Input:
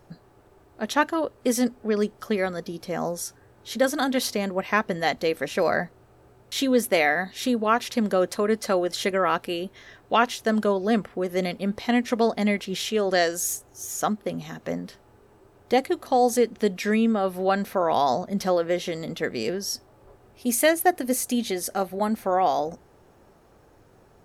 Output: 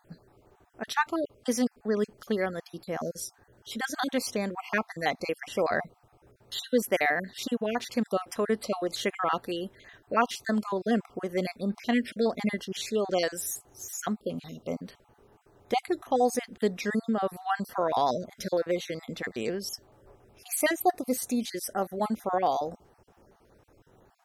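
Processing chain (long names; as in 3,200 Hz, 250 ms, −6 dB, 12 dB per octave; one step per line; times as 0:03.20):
time-frequency cells dropped at random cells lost 34%
level −3.5 dB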